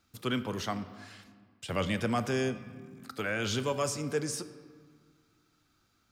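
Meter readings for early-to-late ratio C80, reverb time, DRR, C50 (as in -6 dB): 14.0 dB, 1.8 s, 11.0 dB, 13.0 dB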